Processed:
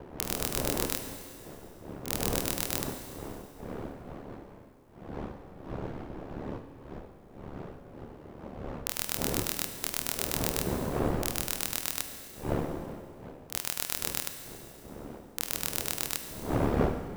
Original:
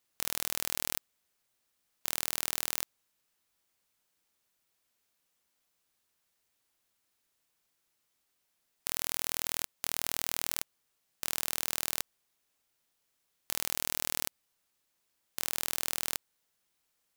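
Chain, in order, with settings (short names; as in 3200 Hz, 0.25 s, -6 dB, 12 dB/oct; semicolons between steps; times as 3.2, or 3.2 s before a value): wind noise 460 Hz -38 dBFS; ring modulator 36 Hz; Schroeder reverb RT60 2.3 s, combs from 32 ms, DRR 7 dB; gain +3 dB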